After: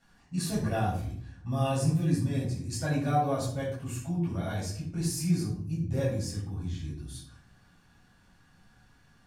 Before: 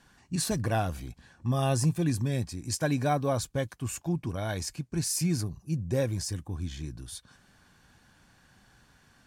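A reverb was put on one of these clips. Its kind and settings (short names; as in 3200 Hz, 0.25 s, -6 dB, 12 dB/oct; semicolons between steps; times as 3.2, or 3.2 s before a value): shoebox room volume 750 m³, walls furnished, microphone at 6.9 m; gain -12 dB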